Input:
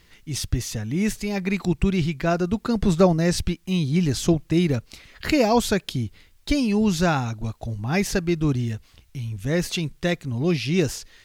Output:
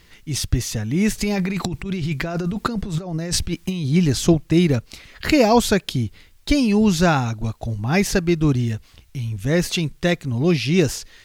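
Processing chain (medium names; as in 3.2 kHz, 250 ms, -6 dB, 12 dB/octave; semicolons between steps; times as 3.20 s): 1.18–3.86 s: compressor with a negative ratio -28 dBFS, ratio -1; trim +4 dB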